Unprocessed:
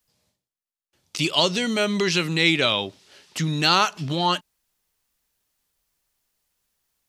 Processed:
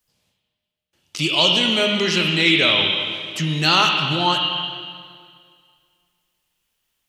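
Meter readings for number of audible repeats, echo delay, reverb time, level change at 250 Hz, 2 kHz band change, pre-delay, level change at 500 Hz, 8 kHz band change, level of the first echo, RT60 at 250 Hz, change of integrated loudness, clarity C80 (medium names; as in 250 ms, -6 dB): no echo, no echo, 2.1 s, +2.0 dB, +5.0 dB, 6 ms, +2.0 dB, 0.0 dB, no echo, 2.1 s, +4.0 dB, 2.5 dB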